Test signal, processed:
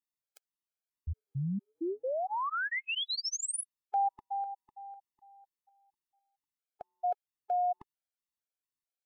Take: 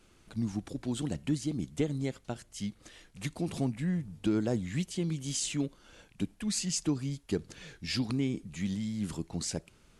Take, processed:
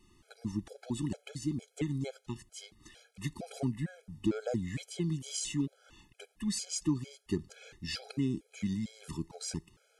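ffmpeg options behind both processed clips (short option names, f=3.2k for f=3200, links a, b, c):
-af "afftfilt=real='re*gt(sin(2*PI*2.2*pts/sr)*(1-2*mod(floor(b*sr/1024/430),2)),0)':imag='im*gt(sin(2*PI*2.2*pts/sr)*(1-2*mod(floor(b*sr/1024/430),2)),0)':win_size=1024:overlap=0.75"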